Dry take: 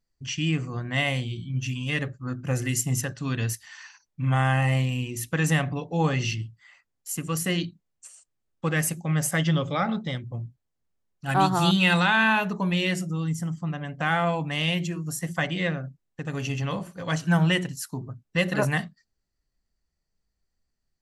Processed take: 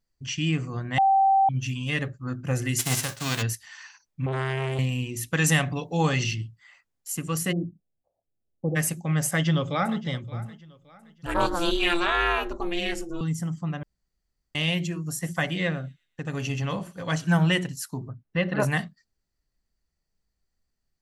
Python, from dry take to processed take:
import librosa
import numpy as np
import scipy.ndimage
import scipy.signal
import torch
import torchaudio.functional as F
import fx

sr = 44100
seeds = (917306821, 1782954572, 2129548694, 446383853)

y = fx.envelope_flatten(x, sr, power=0.3, at=(2.78, 3.41), fade=0.02)
y = fx.transformer_sat(y, sr, knee_hz=1000.0, at=(4.26, 4.79))
y = fx.high_shelf(y, sr, hz=2600.0, db=8.5, at=(5.33, 6.24))
y = fx.steep_lowpass(y, sr, hz=760.0, slope=48, at=(7.51, 8.75), fade=0.02)
y = fx.echo_throw(y, sr, start_s=9.28, length_s=0.75, ms=570, feedback_pct=35, wet_db=-17.5)
y = fx.ring_mod(y, sr, carrier_hz=170.0, at=(11.26, 13.21))
y = fx.echo_wet_highpass(y, sr, ms=122, feedback_pct=38, hz=4900.0, wet_db=-15, at=(15.07, 17.36))
y = fx.air_absorb(y, sr, metres=290.0, at=(18.09, 18.6))
y = fx.edit(y, sr, fx.bleep(start_s=0.98, length_s=0.51, hz=778.0, db=-16.0),
    fx.room_tone_fill(start_s=13.83, length_s=0.72), tone=tone)